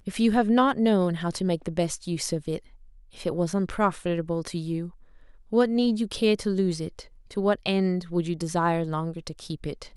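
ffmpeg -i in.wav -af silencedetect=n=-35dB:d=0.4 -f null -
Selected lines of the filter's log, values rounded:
silence_start: 2.58
silence_end: 3.19 | silence_duration: 0.61
silence_start: 4.89
silence_end: 5.52 | silence_duration: 0.64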